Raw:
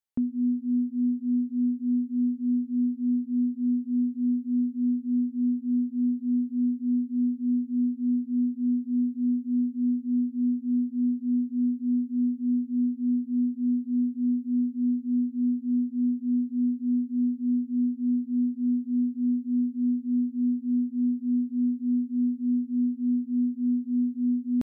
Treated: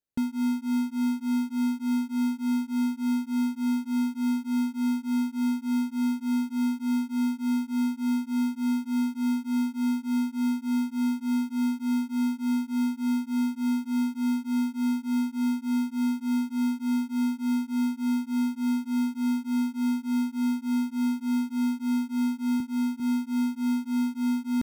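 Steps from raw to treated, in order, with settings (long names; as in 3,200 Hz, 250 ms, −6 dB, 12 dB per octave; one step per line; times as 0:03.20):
0:22.60–0:23.00: high-pass filter 160 Hz 12 dB per octave
in parallel at −5.5 dB: decimation without filtering 38×
on the sum: level −4 dB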